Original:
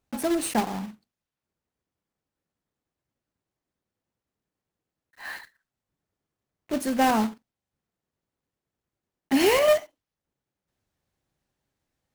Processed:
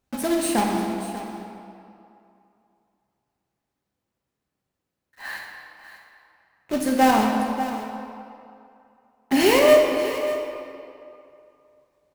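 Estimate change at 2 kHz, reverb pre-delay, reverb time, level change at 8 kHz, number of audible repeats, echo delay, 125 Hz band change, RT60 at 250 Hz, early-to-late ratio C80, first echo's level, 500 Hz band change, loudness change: +4.5 dB, 3 ms, 2.7 s, +3.5 dB, 1, 0.59 s, +4.5 dB, 2.5 s, 3.0 dB, -13.0 dB, +5.5 dB, +2.5 dB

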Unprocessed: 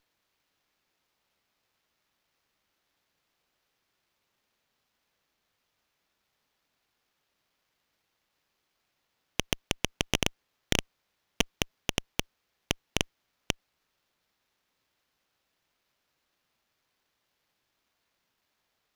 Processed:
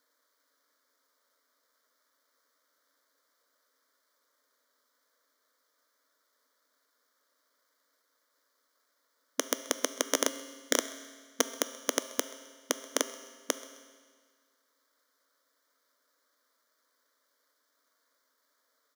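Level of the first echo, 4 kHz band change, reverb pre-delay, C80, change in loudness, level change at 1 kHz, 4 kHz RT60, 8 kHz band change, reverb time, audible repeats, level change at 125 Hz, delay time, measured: -22.0 dB, -4.0 dB, 8 ms, 13.5 dB, 0.0 dB, +2.0 dB, 1.6 s, +5.0 dB, 1.7 s, 1, under -35 dB, 0.131 s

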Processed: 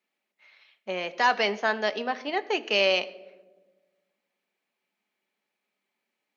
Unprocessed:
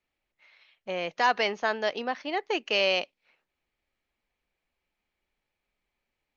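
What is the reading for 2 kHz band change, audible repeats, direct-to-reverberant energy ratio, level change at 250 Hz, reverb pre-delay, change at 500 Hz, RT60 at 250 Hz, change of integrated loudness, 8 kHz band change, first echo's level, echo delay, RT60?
+2.0 dB, none, 10.0 dB, +1.5 dB, 5 ms, +2.0 dB, 2.0 s, +1.5 dB, n/a, none, none, 1.2 s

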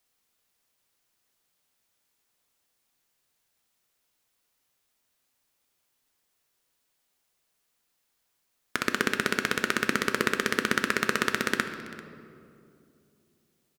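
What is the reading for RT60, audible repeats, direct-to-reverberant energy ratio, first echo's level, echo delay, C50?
2.6 s, 1, 6.5 dB, -19.0 dB, 0.392 s, 8.5 dB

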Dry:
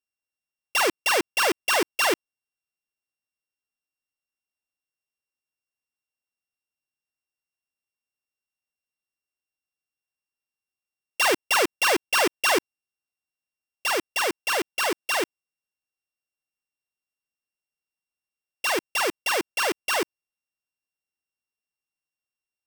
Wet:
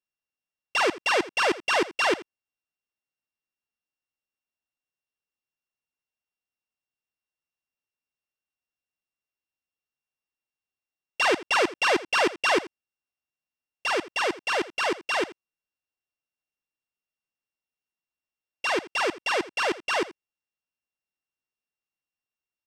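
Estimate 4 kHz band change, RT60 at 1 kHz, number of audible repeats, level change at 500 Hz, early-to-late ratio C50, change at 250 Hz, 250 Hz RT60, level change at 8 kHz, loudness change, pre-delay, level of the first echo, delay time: -2.5 dB, none, 1, 0.0 dB, none, 0.0 dB, none, -8.5 dB, -1.5 dB, none, -17.5 dB, 83 ms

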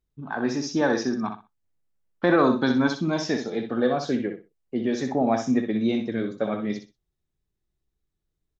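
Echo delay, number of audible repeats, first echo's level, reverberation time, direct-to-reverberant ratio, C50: 62 ms, 3, -7.0 dB, none, none, none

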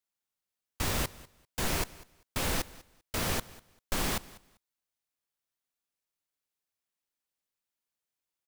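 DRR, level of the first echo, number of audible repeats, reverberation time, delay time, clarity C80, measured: none, -20.5 dB, 2, none, 0.196 s, none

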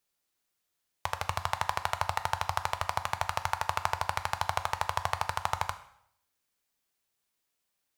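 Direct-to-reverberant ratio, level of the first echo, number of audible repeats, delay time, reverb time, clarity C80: 9.5 dB, none, none, none, 0.70 s, 16.0 dB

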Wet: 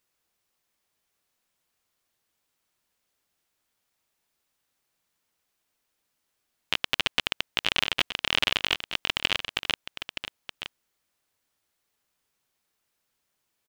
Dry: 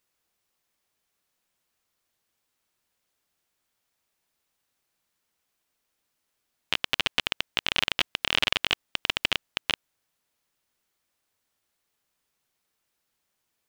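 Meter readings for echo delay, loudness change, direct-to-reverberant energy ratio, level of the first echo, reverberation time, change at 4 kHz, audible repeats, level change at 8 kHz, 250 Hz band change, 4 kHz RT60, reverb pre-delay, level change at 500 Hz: 0.922 s, 0.0 dB, none, -10.5 dB, none, +0.5 dB, 1, +0.5 dB, +0.5 dB, none, none, +0.5 dB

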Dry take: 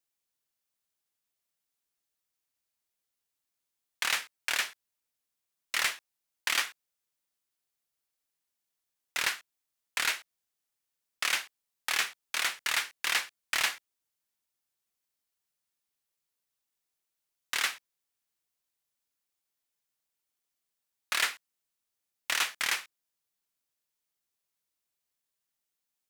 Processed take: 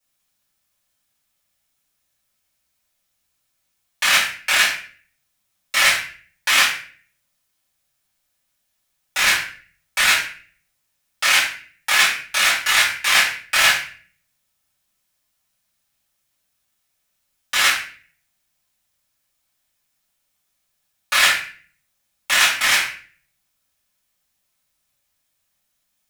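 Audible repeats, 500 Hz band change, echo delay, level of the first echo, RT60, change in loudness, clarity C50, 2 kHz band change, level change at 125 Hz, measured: none, +14.0 dB, none, none, 0.45 s, +13.5 dB, 5.0 dB, +14.5 dB, n/a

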